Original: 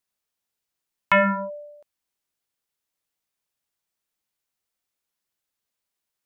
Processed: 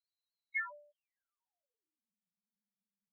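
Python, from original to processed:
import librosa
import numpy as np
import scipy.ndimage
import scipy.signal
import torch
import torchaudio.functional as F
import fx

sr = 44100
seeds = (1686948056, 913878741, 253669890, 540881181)

y = fx.filter_sweep_bandpass(x, sr, from_hz=4100.0, to_hz=200.0, start_s=1.66, end_s=4.16, q=7.4)
y = fx.stretch_vocoder(y, sr, factor=0.5)
y = fx.spec_topn(y, sr, count=2)
y = y * 10.0 ** (15.0 / 20.0)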